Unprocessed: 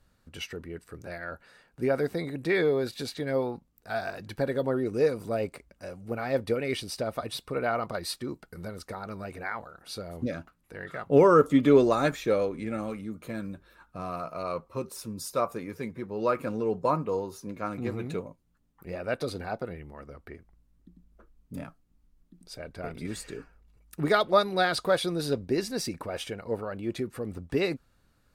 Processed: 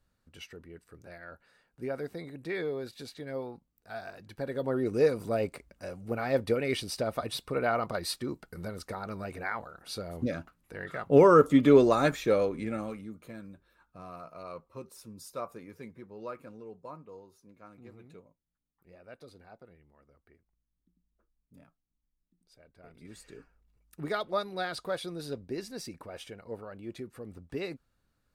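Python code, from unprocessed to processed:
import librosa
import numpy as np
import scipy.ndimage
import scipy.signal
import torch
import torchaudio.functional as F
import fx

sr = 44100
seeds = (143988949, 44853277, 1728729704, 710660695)

y = fx.gain(x, sr, db=fx.line((4.33, -9.0), (4.87, 0.0), (12.61, 0.0), (13.42, -10.0), (15.9, -10.0), (16.8, -19.0), (22.76, -19.0), (23.39, -9.0)))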